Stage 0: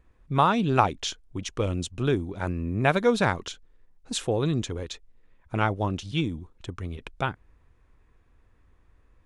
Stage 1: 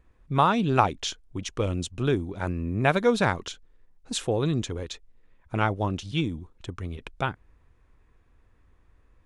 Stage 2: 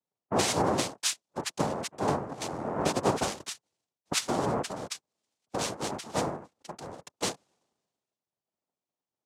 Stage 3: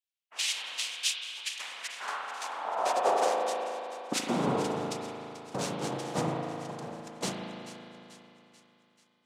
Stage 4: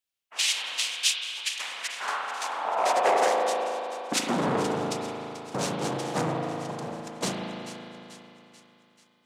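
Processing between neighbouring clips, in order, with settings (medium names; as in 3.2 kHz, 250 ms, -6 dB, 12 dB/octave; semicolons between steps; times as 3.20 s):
no audible change
compression 16:1, threshold -25 dBFS, peak gain reduction 12 dB; noise-vocoded speech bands 2; three bands expanded up and down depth 70%
high-pass sweep 2.8 kHz -> 140 Hz, 1.36–4.70 s; two-band feedback delay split 1.2 kHz, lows 181 ms, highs 437 ms, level -14 dB; reverberation RT60 3.0 s, pre-delay 37 ms, DRR 0 dB; trim -4 dB
transformer saturation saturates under 1.3 kHz; trim +5.5 dB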